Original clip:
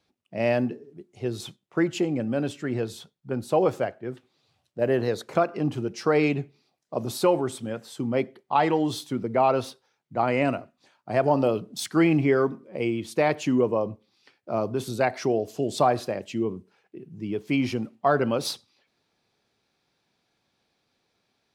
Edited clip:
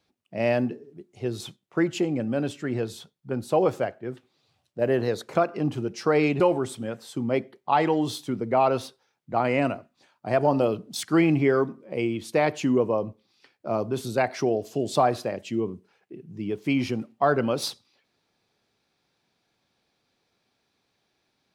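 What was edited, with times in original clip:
6.40–7.23 s: delete

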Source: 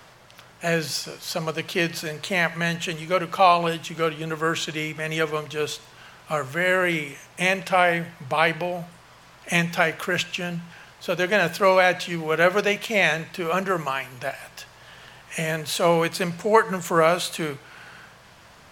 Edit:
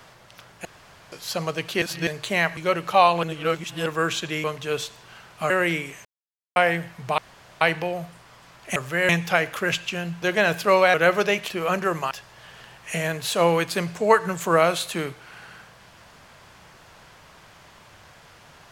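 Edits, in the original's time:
0.65–1.12 s: room tone
1.82–2.07 s: reverse
2.57–3.02 s: delete
3.68–4.31 s: reverse
4.89–5.33 s: delete
6.39–6.72 s: move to 9.55 s
7.27–7.78 s: mute
8.40 s: insert room tone 0.43 s
10.68–11.17 s: delete
11.89–12.32 s: delete
12.88–13.34 s: delete
13.95–14.55 s: delete

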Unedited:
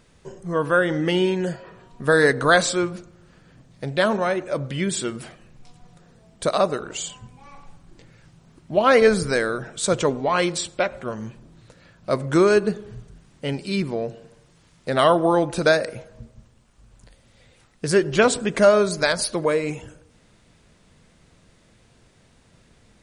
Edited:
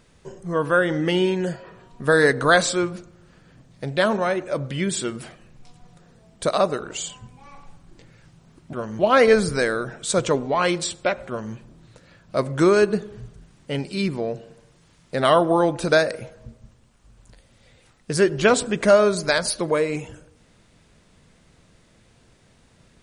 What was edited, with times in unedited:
11.02–11.28 s: copy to 8.73 s

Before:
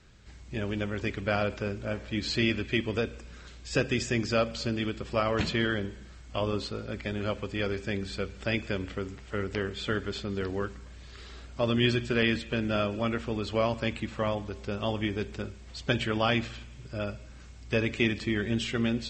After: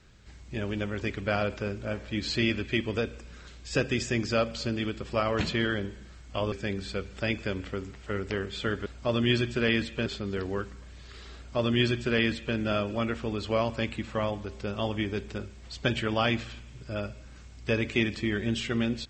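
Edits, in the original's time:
6.52–7.76 s: delete
11.40–12.60 s: copy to 10.10 s

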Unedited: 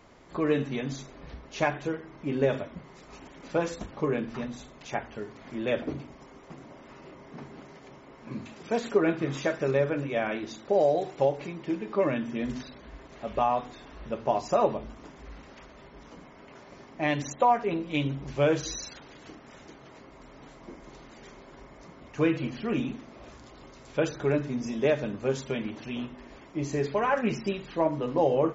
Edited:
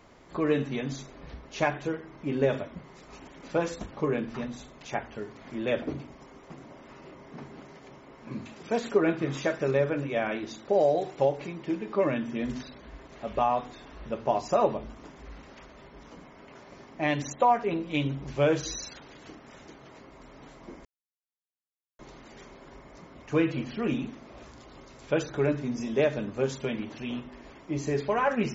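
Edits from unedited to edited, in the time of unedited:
20.85 s: insert silence 1.14 s

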